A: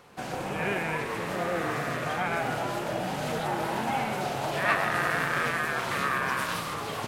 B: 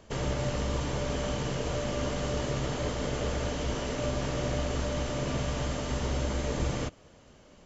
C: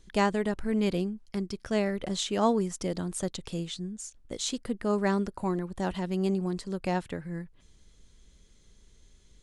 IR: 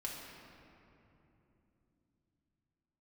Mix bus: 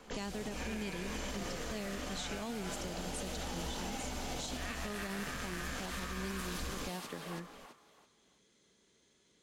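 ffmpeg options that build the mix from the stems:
-filter_complex "[0:a]highpass=f=210:w=0.5412,highpass=f=210:w=1.3066,volume=-5dB,asplit=2[a][b];[b]volume=-5.5dB[c];[1:a]equalizer=f=62:w=0.55:g=-6,aecho=1:1:4:0.65,volume=-3dB[d];[2:a]highpass=250,highshelf=f=4.3k:g=-6.5,volume=-1dB,asplit=2[e][f];[f]apad=whole_len=337766[g];[d][g]sidechaincompress=threshold=-35dB:ratio=8:attack=39:release=262[h];[c]aecho=0:1:331|662|993|1324:1|0.29|0.0841|0.0244[i];[a][h][e][i]amix=inputs=4:normalize=0,acrossover=split=180|3000[j][k][l];[k]acompressor=threshold=-40dB:ratio=6[m];[j][m][l]amix=inputs=3:normalize=0,alimiter=level_in=6dB:limit=-24dB:level=0:latency=1:release=74,volume=-6dB"

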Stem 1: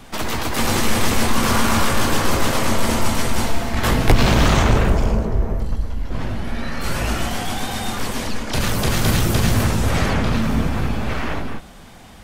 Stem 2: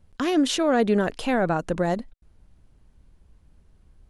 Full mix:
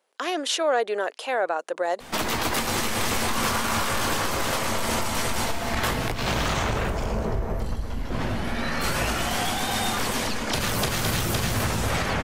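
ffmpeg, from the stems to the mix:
-filter_complex "[0:a]adynamicequalizer=threshold=0.0282:dfrequency=250:dqfactor=0.86:tfrequency=250:tqfactor=0.86:attack=5:release=100:ratio=0.375:range=2.5:mode=cutabove:tftype=bell,acompressor=threshold=-17dB:ratio=6,lowshelf=f=99:g=-9.5,adelay=2000,volume=2.5dB[a];[1:a]highpass=f=450:w=0.5412,highpass=f=450:w=1.3066,volume=1.5dB[b];[a][b]amix=inputs=2:normalize=0,alimiter=limit=-14dB:level=0:latency=1:release=435"

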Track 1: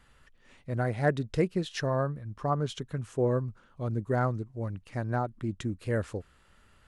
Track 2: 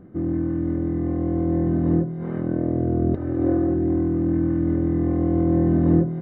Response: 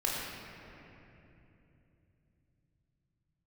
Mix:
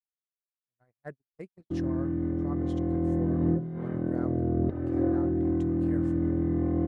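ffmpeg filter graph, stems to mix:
-filter_complex "[0:a]volume=-15dB[a];[1:a]adelay=1550,volume=-5.5dB[b];[a][b]amix=inputs=2:normalize=0,agate=range=-54dB:threshold=-38dB:ratio=16:detection=peak"

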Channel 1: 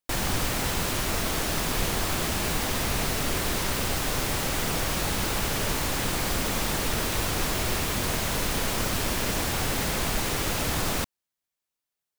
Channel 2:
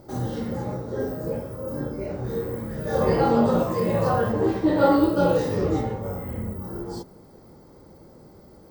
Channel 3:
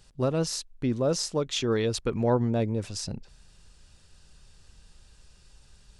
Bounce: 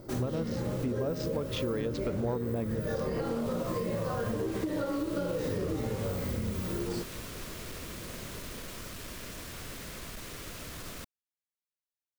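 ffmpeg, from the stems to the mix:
-filter_complex "[0:a]aeval=exprs='clip(val(0),-1,0.0708)':c=same,volume=-14.5dB[a];[1:a]acompressor=threshold=-22dB:ratio=6,volume=0.5dB[b];[2:a]adynamicsmooth=sensitivity=5.5:basefreq=1.5k,highshelf=f=4.5k:g=-11.5,volume=-2dB,asplit=2[c][d];[d]apad=whole_len=537471[e];[a][e]sidechaincompress=threshold=-35dB:ratio=4:attack=16:release=587[f];[f][b]amix=inputs=2:normalize=0,equalizer=f=820:t=o:w=0.29:g=-10,acompressor=threshold=-26dB:ratio=6,volume=0dB[g];[c][g]amix=inputs=2:normalize=0,acompressor=threshold=-28dB:ratio=6"

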